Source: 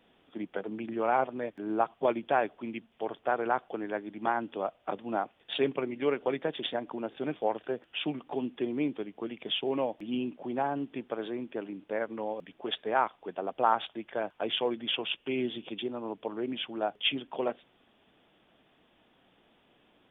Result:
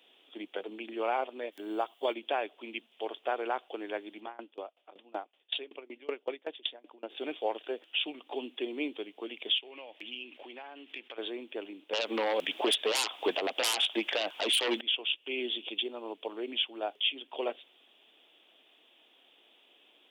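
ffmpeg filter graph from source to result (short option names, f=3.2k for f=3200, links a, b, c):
-filter_complex "[0:a]asettb=1/sr,asplit=3[a][b][c];[a]atrim=end=1.524[d];[b]atrim=start=1.52:end=2.14,asetpts=PTS-STARTPTS,afade=t=in:d=0.004:c=qsin,afade=t=out:st=0.616:d=0.004:c=qsin,aemphasis=mode=production:type=50kf,bandreject=f=2.5k:w=10[e];[c]atrim=start=2.136[f];[d][e]acrossfade=d=0.004:c1=hsin:c2=qsin[g];[g][f]acrossfade=d=0.004:c1=qsin:c2=hsin,asettb=1/sr,asplit=3[h][i][j];[h]atrim=end=4.204[k];[i]atrim=start=4.2:end=7.1,asetpts=PTS-STARTPTS,afade=t=in:d=0.004:c=qsin,afade=t=out:st=2.896:d=0.004:c=qsin,lowpass=f=3.5k:p=1,aeval=exprs='val(0)*pow(10,-25*if(lt(mod(5.3*n/s,1),2*abs(5.3)/1000),1-mod(5.3*n/s,1)/(2*abs(5.3)/1000),(mod(5.3*n/s,1)-2*abs(5.3)/1000)/(1-2*abs(5.3)/1000))/20)':c=same[l];[j]atrim=start=7.096[m];[k][l]acrossfade=d=0.004:c1=hsin:c2=qsin[n];[n][m]acrossfade=d=0.004:c1=qsin:c2=hsin,asettb=1/sr,asplit=3[o][p][q];[o]atrim=end=9.584[r];[p]atrim=start=9.58:end=11.18,asetpts=PTS-STARTPTS,afade=t=in:d=0.004:c=qsin,afade=t=out:st=1.596:d=0.004:c=qsin,agate=range=-33dB:threshold=-51dB:ratio=3:release=100:detection=peak,equalizer=f=2.2k:t=o:w=1.8:g=13,acompressor=threshold=-43dB:ratio=4:attack=3.2:release=140:knee=1:detection=peak[s];[q]atrim=start=11.176[t];[r][s]acrossfade=d=0.004:c1=hsin:c2=qsin[u];[u][t]acrossfade=d=0.004:c1=qsin:c2=hsin,asettb=1/sr,asplit=3[v][w][x];[v]atrim=end=11.934[y];[w]atrim=start=11.93:end=14.81,asetpts=PTS-STARTPTS,afade=t=in:d=0.004:c=qsin,afade=t=out:st=2.876:d=0.004:c=qsin,equalizer=f=400:w=1.4:g=-3.5,aeval=exprs='0.282*sin(PI/2*8.91*val(0)/0.282)':c=same[z];[x]atrim=start=14.806[aa];[y][z]acrossfade=d=0.004:c1=hsin:c2=qsin[ab];[ab][aa]acrossfade=d=0.004:c1=qsin:c2=hsin,highpass=f=310:w=0.5412,highpass=f=310:w=1.3066,highshelf=f=2.2k:t=q:w=1.5:g=8.5,alimiter=limit=-17.5dB:level=0:latency=1:release=341,volume=-1.5dB"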